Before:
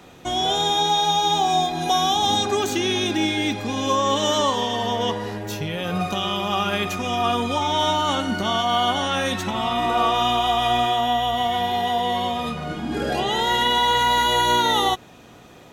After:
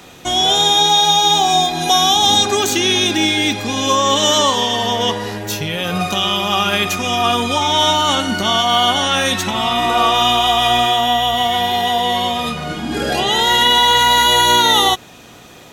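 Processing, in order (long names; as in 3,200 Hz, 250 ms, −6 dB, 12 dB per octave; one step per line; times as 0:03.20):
high-shelf EQ 2,100 Hz +8 dB
level +4 dB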